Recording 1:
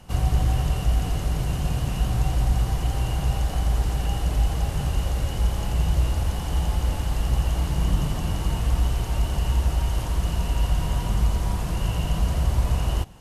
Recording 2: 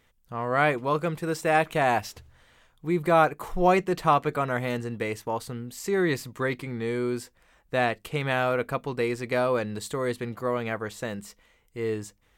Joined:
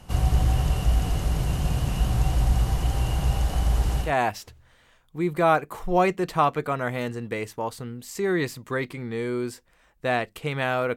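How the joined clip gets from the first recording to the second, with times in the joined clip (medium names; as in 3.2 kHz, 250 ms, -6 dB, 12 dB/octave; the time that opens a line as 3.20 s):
recording 1
4.06 s: go over to recording 2 from 1.75 s, crossfade 0.14 s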